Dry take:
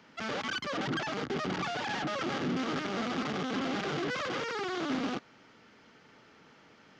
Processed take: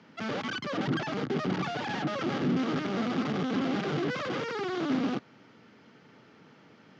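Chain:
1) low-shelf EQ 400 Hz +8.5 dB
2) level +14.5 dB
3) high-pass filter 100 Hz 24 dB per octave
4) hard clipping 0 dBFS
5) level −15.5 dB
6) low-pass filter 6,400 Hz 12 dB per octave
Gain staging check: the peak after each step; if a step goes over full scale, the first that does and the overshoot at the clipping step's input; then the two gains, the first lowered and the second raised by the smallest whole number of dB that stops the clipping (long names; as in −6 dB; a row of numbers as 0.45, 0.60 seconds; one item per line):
−16.5, −2.0, −2.0, −2.0, −17.5, −17.5 dBFS
no step passes full scale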